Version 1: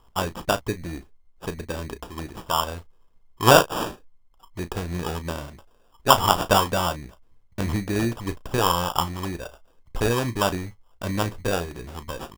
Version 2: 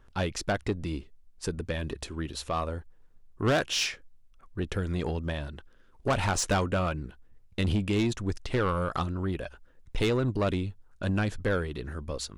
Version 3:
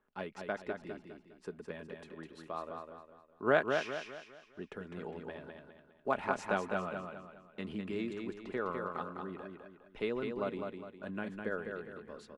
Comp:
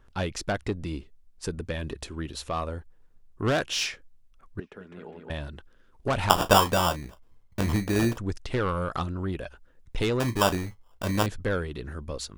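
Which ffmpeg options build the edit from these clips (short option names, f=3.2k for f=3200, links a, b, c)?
-filter_complex "[0:a]asplit=2[a][b];[1:a]asplit=4[c][d][e][f];[c]atrim=end=4.602[g];[2:a]atrim=start=4.598:end=5.302[h];[d]atrim=start=5.298:end=6.302[i];[a]atrim=start=6.298:end=8.182[j];[e]atrim=start=8.178:end=10.202[k];[b]atrim=start=10.198:end=11.262[l];[f]atrim=start=11.258[m];[g][h]acrossfade=d=0.004:c1=hsin:c2=hsin[n];[n][i]acrossfade=d=0.004:c1=hsin:c2=hsin[o];[o][j]acrossfade=d=0.004:c1=hsin:c2=hsin[p];[p][k]acrossfade=d=0.004:c1=hsin:c2=hsin[q];[q][l]acrossfade=d=0.004:c1=hsin:c2=hsin[r];[r][m]acrossfade=d=0.004:c1=hsin:c2=hsin"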